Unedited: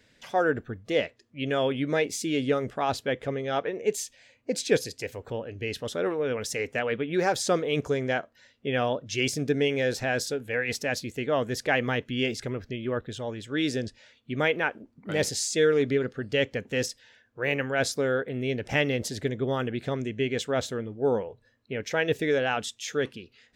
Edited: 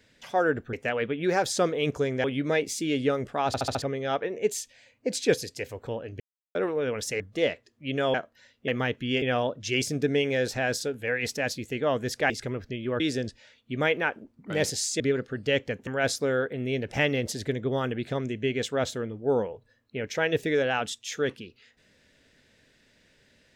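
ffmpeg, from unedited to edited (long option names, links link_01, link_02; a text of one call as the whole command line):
ffmpeg -i in.wav -filter_complex "[0:a]asplit=18[link_01][link_02][link_03][link_04][link_05][link_06][link_07][link_08][link_09][link_10][link_11][link_12][link_13][link_14][link_15][link_16][link_17][link_18];[link_01]atrim=end=0.732[link_19];[link_02]atrim=start=6.628:end=8.142[link_20];[link_03]atrim=start=1.668:end=2.972[link_21];[link_04]atrim=start=2.898:end=2.972[link_22];[link_05]atrim=start=2.898:end=2.972[link_23];[link_06]atrim=start=2.898:end=2.972[link_24];[link_07]atrim=start=2.898:end=2.972[link_25];[link_08]atrim=start=3.248:end=5.63,asetpts=PTS-STARTPTS,afade=type=out:start_time=2.378:duration=0.004:curve=hsin[link_26];[link_09]atrim=start=5.63:end=5.98,asetpts=PTS-STARTPTS,volume=0[link_27];[link_10]atrim=start=5.98:end=6.632,asetpts=PTS-STARTPTS,afade=type=in:duration=0.004:curve=hsin[link_28];[link_11]atrim=start=0.728:end=1.672[link_29];[link_12]atrim=start=8.138:end=8.682[link_30];[link_13]atrim=start=11.758:end=12.302[link_31];[link_14]atrim=start=8.678:end=11.762[link_32];[link_15]atrim=start=12.298:end=13.002[link_33];[link_16]atrim=start=13.588:end=15.592[link_34];[link_17]atrim=start=15.858:end=16.732[link_35];[link_18]atrim=start=17.628[link_36];[link_19][link_20]acrossfade=duration=0.004:curve1=hsin:curve2=hsin[link_37];[link_37][link_21]acrossfade=duration=0.004:curve1=hsin:curve2=hsin[link_38];[link_38][link_22]acrossfade=duration=0.004:curve1=hsin:curve2=hsin[link_39];[link_39][link_23]acrossfade=duration=0.004:curve1=hsin:curve2=hsin[link_40];[link_40][link_24]acrossfade=duration=0.004:curve1=hsin:curve2=hsin[link_41];[link_41][link_25]acrossfade=duration=0.004:curve1=hsin:curve2=hsin[link_42];[link_26][link_27][link_28]concat=n=3:v=0:a=1[link_43];[link_42][link_43]acrossfade=duration=0.004:curve1=hsin:curve2=hsin[link_44];[link_44][link_29]acrossfade=duration=0.004:curve1=hsin:curve2=hsin[link_45];[link_45][link_30]acrossfade=duration=0.004:curve1=hsin:curve2=hsin[link_46];[link_46][link_31]acrossfade=duration=0.004:curve1=hsin:curve2=hsin[link_47];[link_47][link_32]acrossfade=duration=0.004:curve1=hsin:curve2=hsin[link_48];[link_48][link_33]acrossfade=duration=0.004:curve1=hsin:curve2=hsin[link_49];[link_49][link_34]acrossfade=duration=0.004:curve1=hsin:curve2=hsin[link_50];[link_50][link_35]acrossfade=duration=0.004:curve1=hsin:curve2=hsin[link_51];[link_51][link_36]acrossfade=duration=0.004:curve1=hsin:curve2=hsin" out.wav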